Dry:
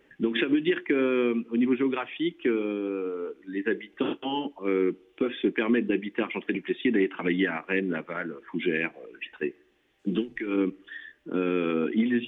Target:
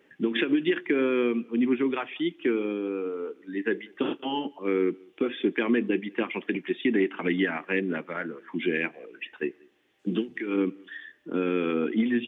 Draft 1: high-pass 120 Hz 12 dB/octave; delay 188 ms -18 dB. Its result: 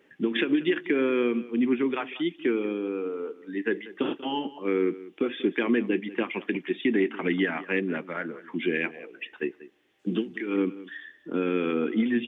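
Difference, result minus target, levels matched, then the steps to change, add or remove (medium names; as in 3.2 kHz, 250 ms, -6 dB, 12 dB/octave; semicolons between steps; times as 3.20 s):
echo-to-direct +11.5 dB
change: delay 188 ms -29.5 dB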